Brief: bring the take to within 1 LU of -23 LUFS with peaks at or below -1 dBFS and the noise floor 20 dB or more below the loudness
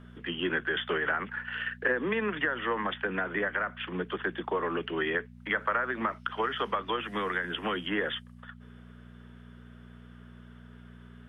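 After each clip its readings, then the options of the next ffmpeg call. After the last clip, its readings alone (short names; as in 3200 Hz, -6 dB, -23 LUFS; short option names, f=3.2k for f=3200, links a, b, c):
hum 60 Hz; harmonics up to 240 Hz; hum level -47 dBFS; loudness -31.0 LUFS; peak -14.5 dBFS; loudness target -23.0 LUFS
-> -af "bandreject=f=60:t=h:w=4,bandreject=f=120:t=h:w=4,bandreject=f=180:t=h:w=4,bandreject=f=240:t=h:w=4"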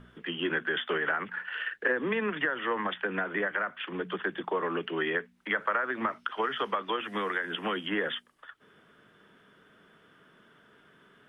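hum none; loudness -31.0 LUFS; peak -14.5 dBFS; loudness target -23.0 LUFS
-> -af "volume=8dB"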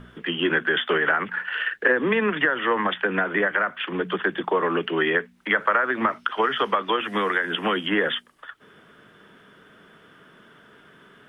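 loudness -23.0 LUFS; peak -6.5 dBFS; noise floor -54 dBFS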